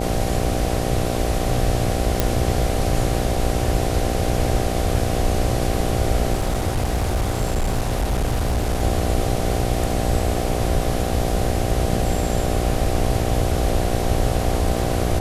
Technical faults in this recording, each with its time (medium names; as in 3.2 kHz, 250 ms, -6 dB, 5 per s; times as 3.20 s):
buzz 60 Hz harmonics 13 -25 dBFS
2.20 s: pop
6.33–8.83 s: clipped -16.5 dBFS